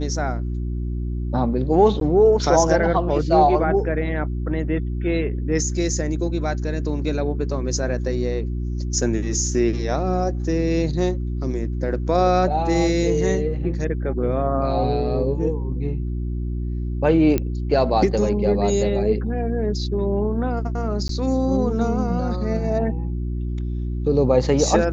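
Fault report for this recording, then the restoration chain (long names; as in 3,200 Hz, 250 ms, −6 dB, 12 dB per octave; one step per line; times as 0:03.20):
mains hum 60 Hz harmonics 6 −25 dBFS
0:02.00–0:02.01: drop-out 12 ms
0:17.38: click −9 dBFS
0:21.08–0:21.09: drop-out 13 ms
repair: click removal
hum removal 60 Hz, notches 6
repair the gap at 0:02.00, 12 ms
repair the gap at 0:21.08, 13 ms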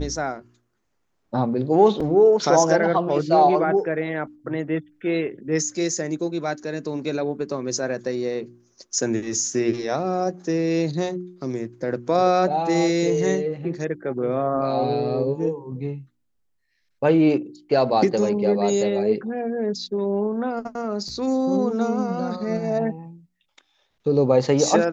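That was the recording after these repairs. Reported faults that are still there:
none of them is left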